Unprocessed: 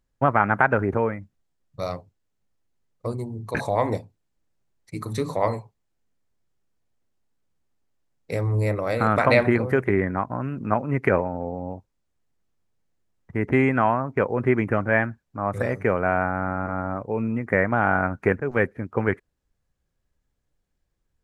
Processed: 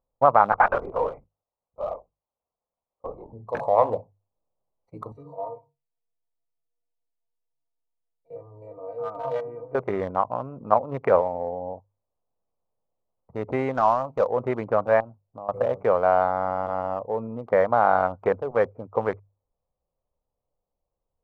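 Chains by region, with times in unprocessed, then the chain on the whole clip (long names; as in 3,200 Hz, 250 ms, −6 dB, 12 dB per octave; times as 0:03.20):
0:00.52–0:03.33: spectral tilt +3.5 dB per octave + linear-prediction vocoder at 8 kHz whisper
0:05.12–0:09.75: spectrum averaged block by block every 50 ms + stiff-string resonator 140 Hz, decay 0.26 s, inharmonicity 0.03
0:13.74–0:14.27: variable-slope delta modulation 32 kbit/s + notch filter 410 Hz, Q 8.2
0:15.00–0:15.49: running median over 25 samples + low-pass filter 1,500 Hz 6 dB per octave + downward compressor 12 to 1, threshold −30 dBFS
whole clip: adaptive Wiener filter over 25 samples; flat-topped bell 760 Hz +14 dB; mains-hum notches 50/100/150 Hz; level −9 dB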